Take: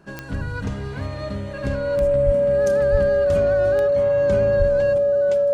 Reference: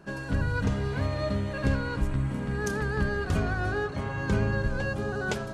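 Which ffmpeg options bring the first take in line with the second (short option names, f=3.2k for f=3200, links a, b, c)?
-filter_complex "[0:a]adeclick=t=4,bandreject=f=570:w=30,asplit=3[a][b][c];[a]afade=t=out:st=2.25:d=0.02[d];[b]highpass=f=140:w=0.5412,highpass=f=140:w=1.3066,afade=t=in:st=2.25:d=0.02,afade=t=out:st=2.37:d=0.02[e];[c]afade=t=in:st=2.37:d=0.02[f];[d][e][f]amix=inputs=3:normalize=0,asplit=3[g][h][i];[g]afade=t=out:st=2.91:d=0.02[j];[h]highpass=f=140:w=0.5412,highpass=f=140:w=1.3066,afade=t=in:st=2.91:d=0.02,afade=t=out:st=3.03:d=0.02[k];[i]afade=t=in:st=3.03:d=0.02[l];[j][k][l]amix=inputs=3:normalize=0,asplit=3[m][n][o];[m]afade=t=out:st=4.58:d=0.02[p];[n]highpass=f=140:w=0.5412,highpass=f=140:w=1.3066,afade=t=in:st=4.58:d=0.02,afade=t=out:st=4.7:d=0.02[q];[o]afade=t=in:st=4.7:d=0.02[r];[p][q][r]amix=inputs=3:normalize=0,asetnsamples=n=441:p=0,asendcmd='4.98 volume volume 7.5dB',volume=0dB"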